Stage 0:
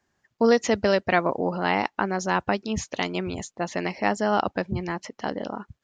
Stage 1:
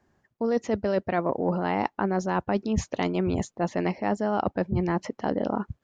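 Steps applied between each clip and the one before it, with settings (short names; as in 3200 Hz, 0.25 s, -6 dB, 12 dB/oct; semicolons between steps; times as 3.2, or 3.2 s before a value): tilt shelf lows +6.5 dB, about 1400 Hz; reverse; compressor 12:1, threshold -24 dBFS, peak gain reduction 15.5 dB; reverse; gain +2.5 dB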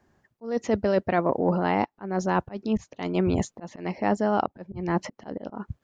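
auto swell 0.244 s; gain +2.5 dB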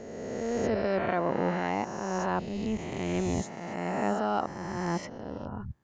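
spectral swells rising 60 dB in 2.21 s; gain -8 dB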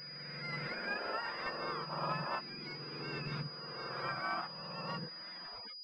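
spectrum mirrored in octaves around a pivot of 980 Hz; spectral gain 1.9–2.13, 220–1400 Hz +9 dB; pulse-width modulation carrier 4900 Hz; gain -5.5 dB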